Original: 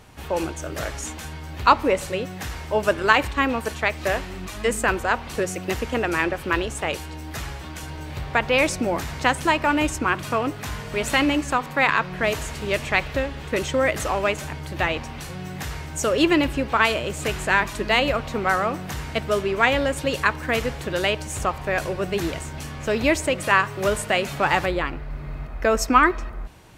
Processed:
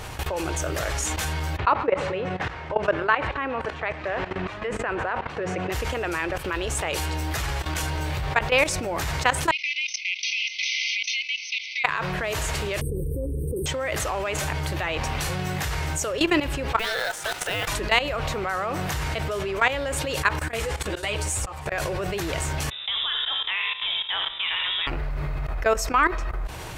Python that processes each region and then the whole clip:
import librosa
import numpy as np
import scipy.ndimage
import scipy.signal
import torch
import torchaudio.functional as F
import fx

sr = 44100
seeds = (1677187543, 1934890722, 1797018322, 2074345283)

y = fx.chain(x, sr, fx.bandpass_edges(low_hz=110.0, high_hz=2300.0),
    fx.echo_feedback(ms=132, feedback_pct=55, wet_db=-22.5), at=(1.57, 5.72))
y = fx.chain(y, sr, fx.brickwall_bandpass(low_hz=2000.0, high_hz=6300.0),
    fx.band_squash(depth_pct=100), at=(9.51, 11.84))
y = fx.chain(y, sr, fx.brickwall_bandstop(low_hz=530.0, high_hz=8200.0),
    fx.env_flatten(amount_pct=100), at=(12.81, 13.66))
y = fx.chain(y, sr, fx.block_float(bits=5),
    fx.highpass(hz=270.0, slope=12),
    fx.ring_mod(carrier_hz=1100.0), at=(16.79, 17.68))
y = fx.chain(y, sr, fx.peak_eq(hz=8600.0, db=7.0, octaves=0.6),
    fx.auto_swell(attack_ms=213.0),
    fx.ensemble(), at=(20.39, 21.72))
y = fx.chain(y, sr, fx.comb_fb(f0_hz=72.0, decay_s=1.6, harmonics='all', damping=0.0, mix_pct=80),
    fx.echo_filtered(ms=81, feedback_pct=51, hz=1100.0, wet_db=-3.0),
    fx.freq_invert(carrier_hz=3700), at=(22.7, 24.87))
y = fx.level_steps(y, sr, step_db=18)
y = fx.peak_eq(y, sr, hz=230.0, db=-9.5, octaves=0.8)
y = fx.env_flatten(y, sr, amount_pct=50)